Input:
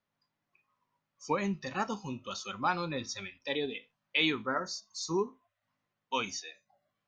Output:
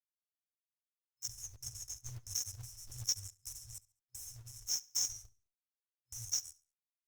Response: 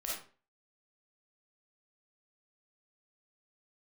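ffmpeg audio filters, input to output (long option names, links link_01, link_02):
-filter_complex "[0:a]asetnsamples=nb_out_samples=441:pad=0,asendcmd='6.37 highshelf g -2',highshelf=frequency=7400:gain=6.5,aeval=exprs='sgn(val(0))*max(abs(val(0))-0.00668,0)':channel_layout=same,acompressor=threshold=-47dB:ratio=2,adynamicequalizer=threshold=0.001:dfrequency=2500:dqfactor=7.8:tfrequency=2500:tqfactor=7.8:attack=5:release=100:ratio=0.375:range=1.5:mode=boostabove:tftype=bell,afftfilt=real='re*(1-between(b*sr/4096,120,5200))':imag='im*(1-between(b*sr/4096,120,5200))':win_size=4096:overlap=0.75,acrossover=split=140[link_01][link_02];[link_02]acompressor=threshold=-48dB:ratio=2[link_03];[link_01][link_03]amix=inputs=2:normalize=0,acrusher=bits=3:mode=log:mix=0:aa=0.000001,aecho=1:1:70|140|210:0.0794|0.0286|0.0103,volume=17dB" -ar 48000 -c:a libopus -b:a 64k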